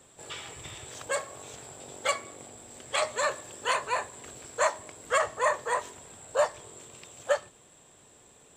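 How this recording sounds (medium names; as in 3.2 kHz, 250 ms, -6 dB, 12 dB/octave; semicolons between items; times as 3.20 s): noise floor -58 dBFS; spectral tilt -1.0 dB/octave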